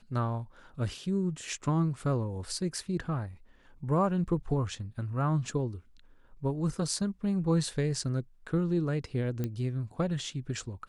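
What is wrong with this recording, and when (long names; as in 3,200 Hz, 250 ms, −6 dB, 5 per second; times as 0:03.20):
0:09.44: click −20 dBFS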